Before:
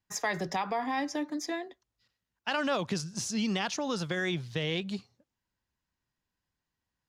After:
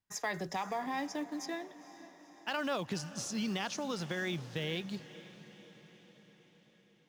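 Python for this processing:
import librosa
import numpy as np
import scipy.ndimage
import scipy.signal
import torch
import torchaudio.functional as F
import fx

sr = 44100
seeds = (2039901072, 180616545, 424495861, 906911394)

p1 = fx.quant_float(x, sr, bits=2)
p2 = x + (p1 * 10.0 ** (-6.0 / 20.0))
p3 = fx.echo_diffused(p2, sr, ms=485, feedback_pct=59, wet_db=-16.0)
y = p3 * 10.0 ** (-8.5 / 20.0)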